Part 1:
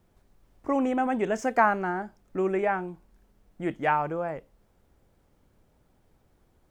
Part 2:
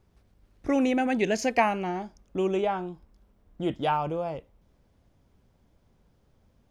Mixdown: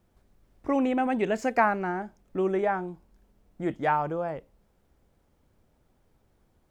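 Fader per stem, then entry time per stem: −2.5, −11.0 decibels; 0.00, 0.00 seconds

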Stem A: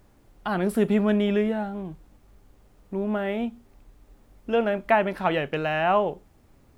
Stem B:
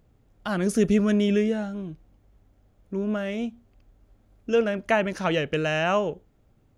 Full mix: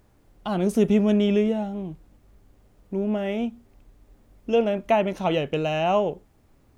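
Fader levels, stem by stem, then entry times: −2.5, −6.0 decibels; 0.00, 0.00 seconds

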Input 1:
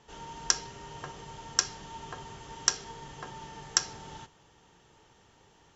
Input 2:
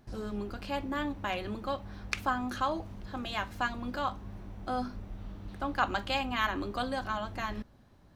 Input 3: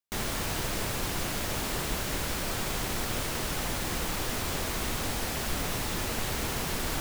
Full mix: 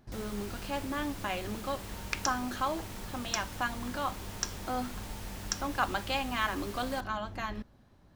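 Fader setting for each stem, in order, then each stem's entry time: −9.0, −1.0, −13.5 decibels; 1.75, 0.00, 0.00 seconds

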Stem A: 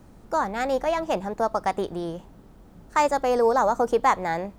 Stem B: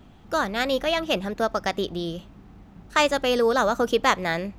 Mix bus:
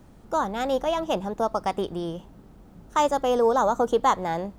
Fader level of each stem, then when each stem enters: −1.5, −12.5 decibels; 0.00, 0.00 seconds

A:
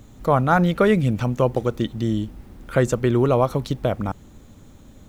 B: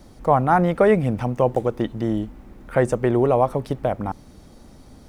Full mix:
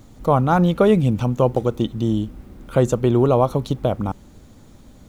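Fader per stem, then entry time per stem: −1.0, −5.5 decibels; 0.00, 0.00 seconds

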